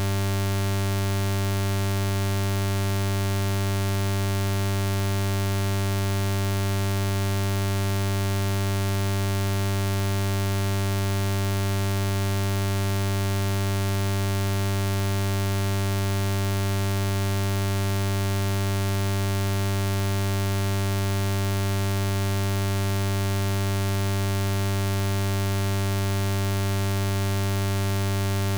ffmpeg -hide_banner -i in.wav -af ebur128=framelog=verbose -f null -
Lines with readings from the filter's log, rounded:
Integrated loudness:
  I:         -25.4 LUFS
  Threshold: -35.4 LUFS
Loudness range:
  LRA:         0.0 LU
  Threshold: -45.4 LUFS
  LRA low:   -25.4 LUFS
  LRA high:  -25.4 LUFS